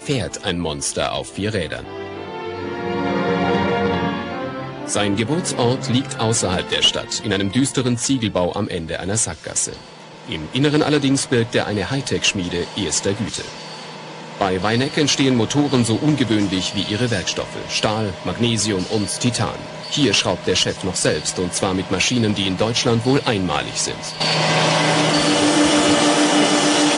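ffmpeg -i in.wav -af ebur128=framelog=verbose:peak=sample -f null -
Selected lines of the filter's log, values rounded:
Integrated loudness:
  I:         -18.9 LUFS
  Threshold: -29.2 LUFS
Loudness range:
  LRA:         4.9 LU
  Threshold: -39.4 LUFS
  LRA low:   -21.9 LUFS
  LRA high:  -17.0 LUFS
Sample peak:
  Peak:       -1.7 dBFS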